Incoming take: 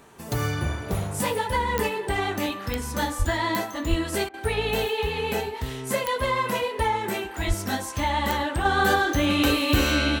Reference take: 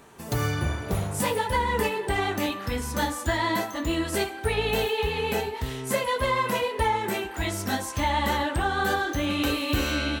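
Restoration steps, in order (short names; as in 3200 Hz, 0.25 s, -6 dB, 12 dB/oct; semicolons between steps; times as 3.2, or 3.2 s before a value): de-click; 3.18–3.3 HPF 140 Hz 24 dB/oct; 3.89–4.01 HPF 140 Hz 24 dB/oct; 7.47–7.59 HPF 140 Hz 24 dB/oct; interpolate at 4.29, 46 ms; 8.65 gain correction -4.5 dB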